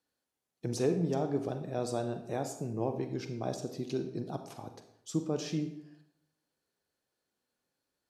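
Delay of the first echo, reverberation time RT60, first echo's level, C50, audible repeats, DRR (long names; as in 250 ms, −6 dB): no echo audible, 0.75 s, no echo audible, 9.5 dB, no echo audible, 7.0 dB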